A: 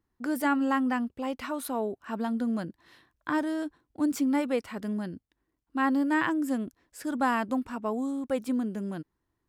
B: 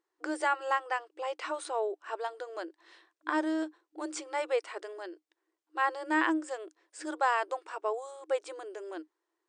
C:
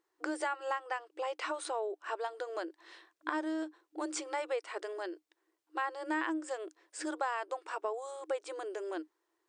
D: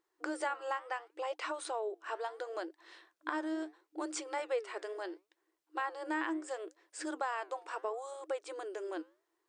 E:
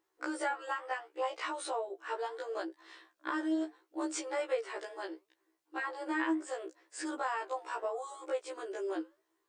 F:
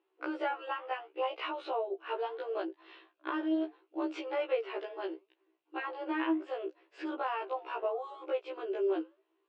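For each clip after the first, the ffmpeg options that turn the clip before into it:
-af "afftfilt=real='re*between(b*sr/4096,310,9300)':imag='im*between(b*sr/4096,310,9300)':win_size=4096:overlap=0.75"
-af "acompressor=threshold=-37dB:ratio=3,volume=3dB"
-af "flanger=delay=0.7:depth=9.4:regen=87:speed=0.72:shape=triangular,volume=3dB"
-af "afftfilt=real='re*1.73*eq(mod(b,3),0)':imag='im*1.73*eq(mod(b,3),0)':win_size=2048:overlap=0.75,volume=4dB"
-af "highpass=210,equalizer=f=240:t=q:w=4:g=-4,equalizer=f=380:t=q:w=4:g=8,equalizer=f=660:t=q:w=4:g=3,equalizer=f=1.8k:t=q:w=4:g=-6,equalizer=f=2.7k:t=q:w=4:g=8,lowpass=f=3.5k:w=0.5412,lowpass=f=3.5k:w=1.3066"

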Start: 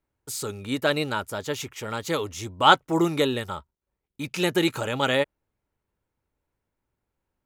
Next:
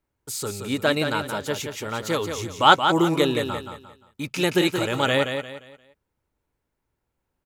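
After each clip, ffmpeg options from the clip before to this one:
-af "aecho=1:1:175|350|525|700:0.447|0.147|0.0486|0.0161,volume=1.5dB"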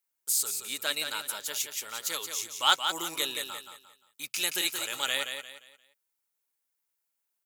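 -af "aderivative,volume=4.5dB"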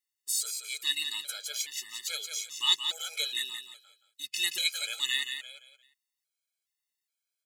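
-af "equalizer=f=125:t=o:w=1:g=-6,equalizer=f=250:t=o:w=1:g=-4,equalizer=f=1k:t=o:w=1:g=-7,equalizer=f=2k:t=o:w=1:g=8,equalizer=f=4k:t=o:w=1:g=10,equalizer=f=8k:t=o:w=1:g=5,afftfilt=real='re*gt(sin(2*PI*1.2*pts/sr)*(1-2*mod(floor(b*sr/1024/430),2)),0)':imag='im*gt(sin(2*PI*1.2*pts/sr)*(1-2*mod(floor(b*sr/1024/430),2)),0)':win_size=1024:overlap=0.75,volume=-6dB"

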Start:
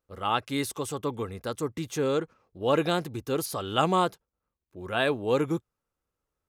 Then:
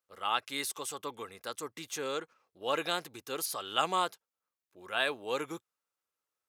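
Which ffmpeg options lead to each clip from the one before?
-af "highpass=f=1.4k:p=1"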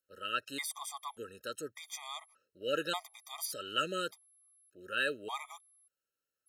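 -af "aeval=exprs='val(0)+0.000631*sin(2*PI*11000*n/s)':c=same,afftfilt=real='re*gt(sin(2*PI*0.85*pts/sr)*(1-2*mod(floor(b*sr/1024/630),2)),0)':imag='im*gt(sin(2*PI*0.85*pts/sr)*(1-2*mod(floor(b*sr/1024/630),2)),0)':win_size=1024:overlap=0.75"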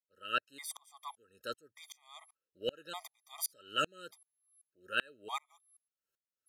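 -af "aeval=exprs='val(0)*pow(10,-34*if(lt(mod(-2.6*n/s,1),2*abs(-2.6)/1000),1-mod(-2.6*n/s,1)/(2*abs(-2.6)/1000),(mod(-2.6*n/s,1)-2*abs(-2.6)/1000)/(1-2*abs(-2.6)/1000))/20)':c=same,volume=4.5dB"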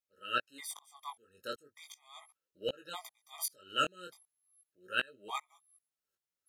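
-af "flanger=delay=15:depth=7.5:speed=0.38,volume=3.5dB"

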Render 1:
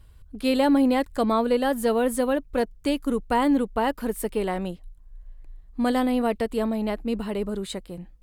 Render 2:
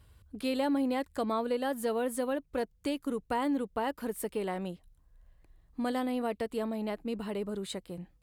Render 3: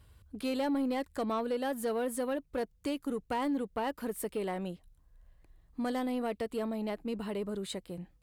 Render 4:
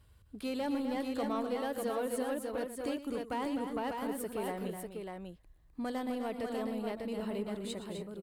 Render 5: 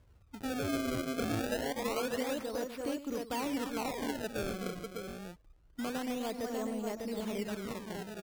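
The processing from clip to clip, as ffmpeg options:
-af "highpass=69,equalizer=f=230:w=5.2:g=-2.5,acompressor=threshold=-36dB:ratio=1.5,volume=-2.5dB"
-af "asoftclip=type=tanh:threshold=-24.5dB"
-af "aecho=1:1:117|255|289|597:0.211|0.398|0.133|0.596,volume=-3.5dB"
-af "acrusher=samples=27:mix=1:aa=0.000001:lfo=1:lforange=43.2:lforate=0.26"

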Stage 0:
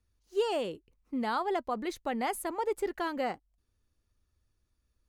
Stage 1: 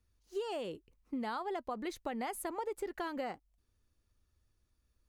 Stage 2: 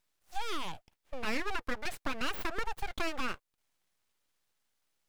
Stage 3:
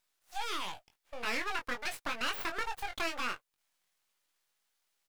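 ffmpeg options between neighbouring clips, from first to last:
-af "acompressor=threshold=-35dB:ratio=6"
-af "highpass=330,equalizer=f=2k:w=1.5:g=6,aeval=exprs='abs(val(0))':c=same,volume=6.5dB"
-filter_complex "[0:a]lowshelf=f=410:g=-11.5,asplit=2[a][b];[b]adelay=21,volume=-6dB[c];[a][c]amix=inputs=2:normalize=0,volume=1.5dB"

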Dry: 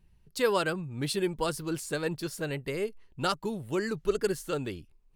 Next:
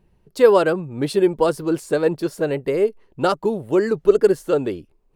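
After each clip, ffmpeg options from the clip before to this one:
-af "equalizer=f=490:t=o:w=2.8:g=14.5"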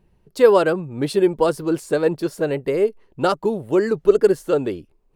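-af anull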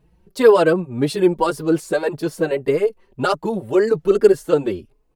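-filter_complex "[0:a]asplit=2[a][b];[b]adelay=4.3,afreqshift=1.8[c];[a][c]amix=inputs=2:normalize=1,volume=5dB"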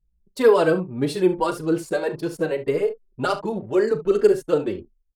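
-af "aecho=1:1:38|70:0.266|0.2,anlmdn=1,volume=-4dB"

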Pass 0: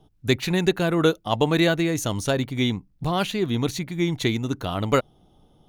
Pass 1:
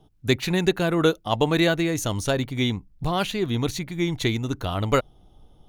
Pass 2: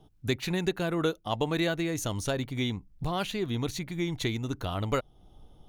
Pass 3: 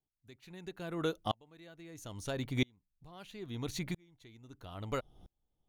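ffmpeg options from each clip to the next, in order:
-af "asubboost=boost=3:cutoff=89"
-af "acompressor=threshold=-35dB:ratio=1.5,volume=-1dB"
-af "aeval=exprs='val(0)*pow(10,-37*if(lt(mod(-0.76*n/s,1),2*abs(-0.76)/1000),1-mod(-0.76*n/s,1)/(2*abs(-0.76)/1000),(mod(-0.76*n/s,1)-2*abs(-0.76)/1000)/(1-2*abs(-0.76)/1000))/20)':c=same,volume=1dB"

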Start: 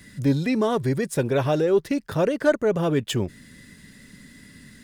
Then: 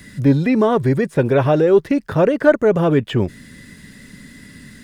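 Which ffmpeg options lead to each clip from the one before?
-filter_complex "[0:a]acrossover=split=2800[a][b];[b]acompressor=threshold=-53dB:ratio=4:attack=1:release=60[c];[a][c]amix=inputs=2:normalize=0,volume=7dB"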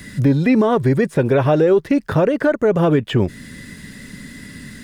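-af "alimiter=limit=-11.5dB:level=0:latency=1:release=271,volume=4.5dB"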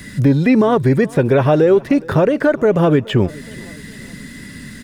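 -af "aecho=1:1:417|834|1251:0.075|0.036|0.0173,volume=2dB"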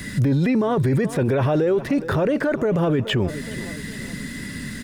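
-af "alimiter=limit=-15.5dB:level=0:latency=1:release=12,volume=2dB"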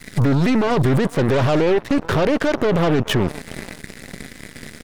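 -af "aeval=exprs='0.224*(cos(1*acos(clip(val(0)/0.224,-1,1)))-cos(1*PI/2))+0.0447*(cos(2*acos(clip(val(0)/0.224,-1,1)))-cos(2*PI/2))+0.0141*(cos(6*acos(clip(val(0)/0.224,-1,1)))-cos(6*PI/2))+0.0316*(cos(7*acos(clip(val(0)/0.224,-1,1)))-cos(7*PI/2))':c=same,volume=2dB"

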